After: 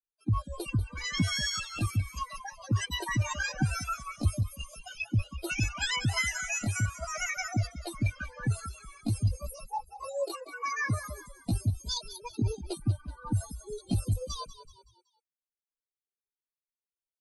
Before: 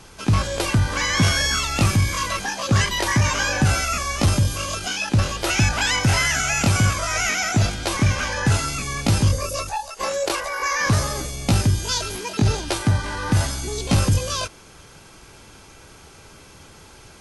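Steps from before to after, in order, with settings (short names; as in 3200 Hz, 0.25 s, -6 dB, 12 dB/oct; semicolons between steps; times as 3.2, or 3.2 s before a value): per-bin expansion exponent 3; frequency-shifting echo 0.188 s, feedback 41%, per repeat -39 Hz, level -12 dB; reverb removal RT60 0.51 s; gain -3.5 dB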